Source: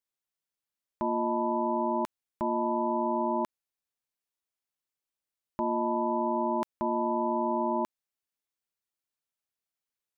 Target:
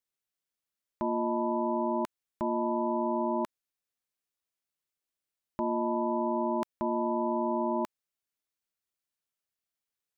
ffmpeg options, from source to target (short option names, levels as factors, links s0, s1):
-af "equalizer=f=890:w=3.1:g=-3"